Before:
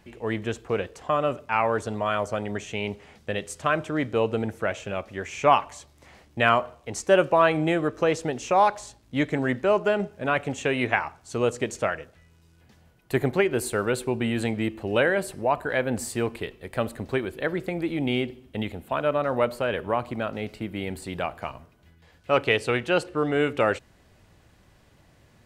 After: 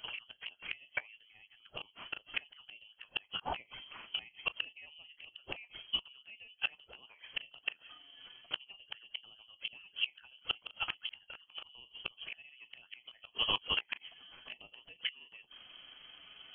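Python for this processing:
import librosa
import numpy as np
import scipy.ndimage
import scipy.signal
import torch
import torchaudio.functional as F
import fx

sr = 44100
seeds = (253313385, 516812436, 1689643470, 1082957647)

y = fx.env_flanger(x, sr, rest_ms=8.9, full_db=-21.0)
y = fx.freq_invert(y, sr, carrier_hz=3200)
y = fx.gate_flip(y, sr, shuts_db=-24.0, range_db=-36)
y = fx.doubler(y, sr, ms=40.0, db=-13.5)
y = fx.stretch_grains(y, sr, factor=0.65, grain_ms=88.0)
y = F.gain(torch.from_numpy(y), 6.5).numpy()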